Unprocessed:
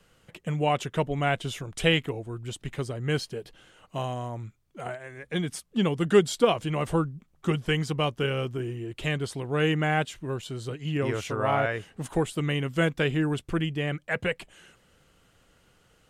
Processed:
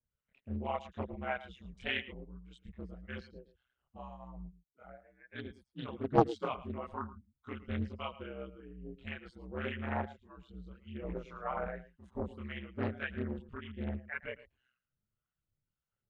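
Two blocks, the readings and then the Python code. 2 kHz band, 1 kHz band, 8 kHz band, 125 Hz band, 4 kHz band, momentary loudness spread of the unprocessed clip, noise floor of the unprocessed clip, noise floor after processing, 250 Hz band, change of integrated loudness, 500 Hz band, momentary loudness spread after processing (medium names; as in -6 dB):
-12.0 dB, -8.5 dB, under -30 dB, -14.5 dB, -16.0 dB, 12 LU, -64 dBFS, under -85 dBFS, -11.5 dB, -11.5 dB, -12.5 dB, 16 LU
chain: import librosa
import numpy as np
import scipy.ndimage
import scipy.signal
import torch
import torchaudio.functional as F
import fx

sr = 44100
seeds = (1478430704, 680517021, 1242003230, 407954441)

y = fx.bin_expand(x, sr, power=1.5)
y = scipy.signal.sosfilt(scipy.signal.butter(2, 2300.0, 'lowpass', fs=sr, output='sos'), y)
y = fx.low_shelf(y, sr, hz=380.0, db=-4.0)
y = fx.harmonic_tremolo(y, sr, hz=1.8, depth_pct=70, crossover_hz=730.0)
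y = fx.chorus_voices(y, sr, voices=4, hz=0.68, base_ms=26, depth_ms=1.6, mix_pct=55)
y = y * np.sin(2.0 * np.pi * 64.0 * np.arange(len(y)) / sr)
y = y + 10.0 ** (-16.0 / 20.0) * np.pad(y, (int(111 * sr / 1000.0), 0))[:len(y)]
y = fx.doppler_dist(y, sr, depth_ms=0.72)
y = F.gain(torch.from_numpy(y), 1.5).numpy()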